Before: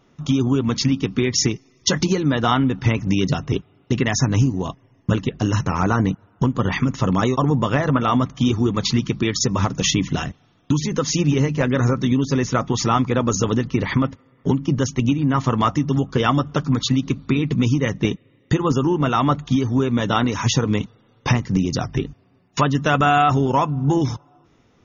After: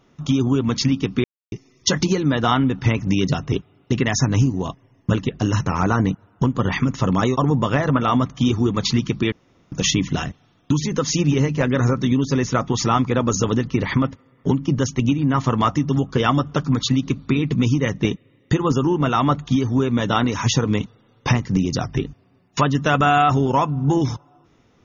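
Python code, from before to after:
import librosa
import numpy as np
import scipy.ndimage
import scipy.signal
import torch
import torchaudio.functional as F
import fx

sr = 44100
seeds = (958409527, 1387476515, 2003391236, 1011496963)

y = fx.edit(x, sr, fx.silence(start_s=1.24, length_s=0.28),
    fx.room_tone_fill(start_s=9.32, length_s=0.4), tone=tone)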